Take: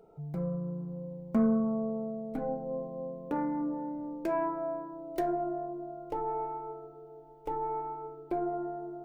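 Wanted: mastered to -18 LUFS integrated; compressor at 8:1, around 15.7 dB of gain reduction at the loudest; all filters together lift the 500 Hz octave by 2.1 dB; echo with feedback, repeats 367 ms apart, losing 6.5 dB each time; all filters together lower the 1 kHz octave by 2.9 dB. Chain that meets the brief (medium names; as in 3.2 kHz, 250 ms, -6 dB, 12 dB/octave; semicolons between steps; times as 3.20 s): peaking EQ 500 Hz +5 dB; peaking EQ 1 kHz -6.5 dB; compression 8:1, threshold -38 dBFS; feedback delay 367 ms, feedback 47%, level -6.5 dB; trim +22.5 dB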